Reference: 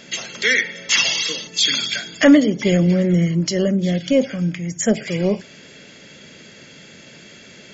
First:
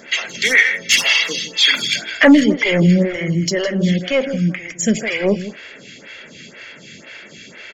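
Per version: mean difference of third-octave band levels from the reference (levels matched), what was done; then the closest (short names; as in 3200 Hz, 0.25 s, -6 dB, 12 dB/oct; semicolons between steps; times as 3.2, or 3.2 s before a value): 5.0 dB: bell 2100 Hz +8.5 dB 1.4 oct; soft clip -5.5 dBFS, distortion -16 dB; echo 0.159 s -11.5 dB; photocell phaser 2 Hz; gain +4 dB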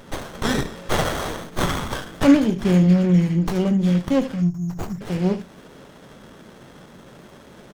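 8.0 dB: spectral delete 4.42–5.01, 210–5400 Hz; on a send: early reflections 22 ms -10 dB, 73 ms -13 dB; on the sum: dynamic EQ 650 Hz, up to -7 dB, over -33 dBFS, Q 0.84; running maximum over 17 samples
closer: first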